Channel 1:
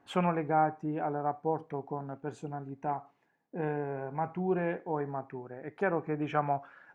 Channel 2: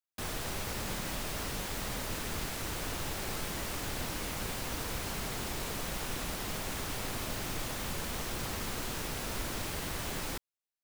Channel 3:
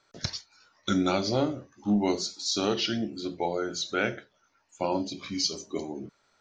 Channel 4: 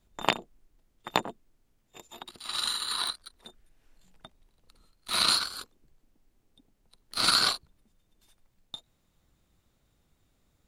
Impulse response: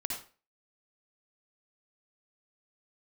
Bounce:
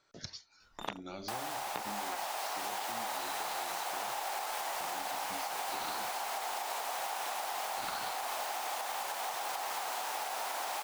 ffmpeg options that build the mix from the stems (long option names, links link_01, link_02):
-filter_complex "[0:a]acrusher=bits=2:mix=0:aa=0.5,adelay=1950,volume=-8dB[link_01];[1:a]dynaudnorm=framelen=540:gausssize=5:maxgain=11dB,adelay=1100,volume=1dB[link_02];[2:a]acompressor=threshold=-36dB:ratio=4,volume=-5dB[link_03];[3:a]acrossover=split=2900[link_04][link_05];[link_05]acompressor=threshold=-38dB:ratio=4:attack=1:release=60[link_06];[link_04][link_06]amix=inputs=2:normalize=0,adelay=600,volume=-5.5dB[link_07];[link_01][link_02]amix=inputs=2:normalize=0,highpass=frequency=780:width_type=q:width=4.9,alimiter=limit=-18dB:level=0:latency=1:release=409,volume=0dB[link_08];[link_03][link_07][link_08]amix=inputs=3:normalize=0,acompressor=threshold=-36dB:ratio=4"